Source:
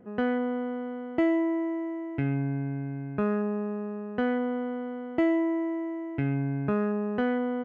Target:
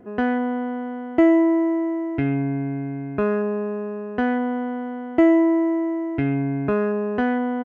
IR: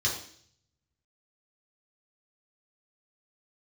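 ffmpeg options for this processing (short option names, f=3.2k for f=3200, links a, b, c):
-af "aecho=1:1:2.9:0.46,volume=6dB"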